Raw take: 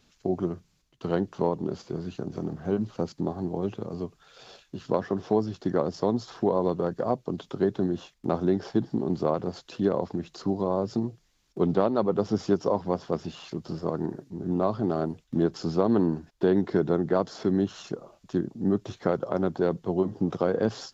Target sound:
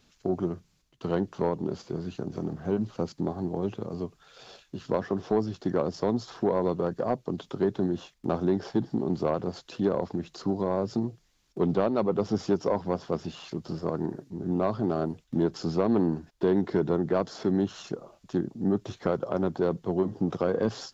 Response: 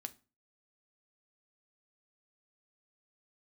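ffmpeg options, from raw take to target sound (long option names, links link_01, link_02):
-af "asoftclip=type=tanh:threshold=-14dB"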